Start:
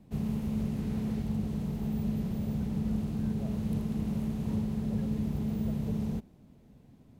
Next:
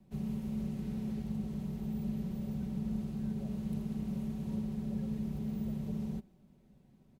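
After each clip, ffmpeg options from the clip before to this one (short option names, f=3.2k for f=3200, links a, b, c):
-filter_complex "[0:a]aecho=1:1:5.3:0.5,acrossover=split=380|840|2100[a][b][c][d];[c]alimiter=level_in=29.5dB:limit=-24dB:level=0:latency=1,volume=-29.5dB[e];[a][b][e][d]amix=inputs=4:normalize=0,volume=-7dB"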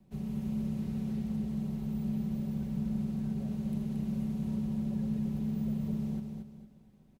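-af "aecho=1:1:227|454|681|908:0.562|0.191|0.065|0.0221"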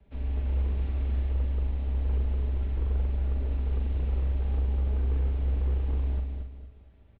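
-filter_complex "[0:a]asoftclip=type=hard:threshold=-29dB,asplit=2[a][b];[b]adelay=42,volume=-5.5dB[c];[a][c]amix=inputs=2:normalize=0,highpass=f=180:t=q:w=0.5412,highpass=f=180:t=q:w=1.307,lowpass=f=3.6k:t=q:w=0.5176,lowpass=f=3.6k:t=q:w=0.7071,lowpass=f=3.6k:t=q:w=1.932,afreqshift=-150,volume=6.5dB"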